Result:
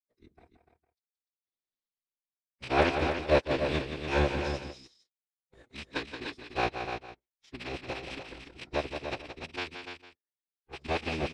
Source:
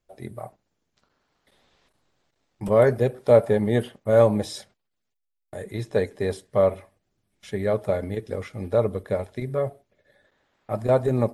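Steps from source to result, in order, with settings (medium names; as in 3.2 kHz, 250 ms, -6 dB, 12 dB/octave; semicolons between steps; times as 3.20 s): rattle on loud lows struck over -29 dBFS, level -19 dBFS; peaking EQ 5 kHz +14.5 dB 1.5 oct; in parallel at -2 dB: compression, threshold -33 dBFS, peak gain reduction 21 dB; on the sum: power-law waveshaper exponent 2; rotary cabinet horn 1 Hz, later 6 Hz, at 3.10 s; formant-preserving pitch shift -8 st; distance through air 84 m; on a send: multi-tap echo 174/294/455 ms -8/-7.5/-18.5 dB; on the sum: trim -2 dB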